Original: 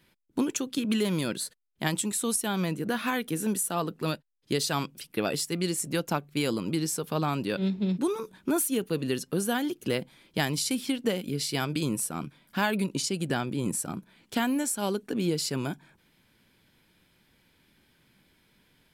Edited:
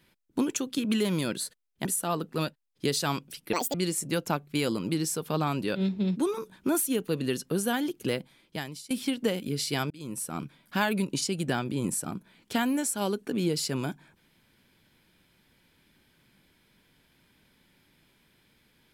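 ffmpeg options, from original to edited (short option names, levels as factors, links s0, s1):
-filter_complex "[0:a]asplit=6[s0][s1][s2][s3][s4][s5];[s0]atrim=end=1.852[s6];[s1]atrim=start=3.518:end=5.204[s7];[s2]atrim=start=5.2:end=5.56,asetpts=PTS-STARTPTS,asetrate=74088,aresample=44100[s8];[s3]atrim=start=5.556:end=10.72,asetpts=PTS-STARTPTS,afade=t=out:st=4.284:d=0.88:silence=0.0794328[s9];[s4]atrim=start=10.72:end=11.72,asetpts=PTS-STARTPTS,afade=t=in:d=0.004:c=hsin:silence=0.0794328,afade=t=out:st=0.996:d=0.004:c=hsin[s10];[s5]atrim=start=11.72,asetpts=PTS-STARTPTS,afade=t=in:d=0.48[s11];[s6][s7]acrossfade=d=0.004:c1=hsin:c2=hsin[s12];[s12][s8]acrossfade=d=0.004:c1=hsin:c2=hsin[s13];[s9][s10][s11]concat=n=3:v=0:a=1[s14];[s13][s14]acrossfade=d=0.004:c1=hsin:c2=hsin"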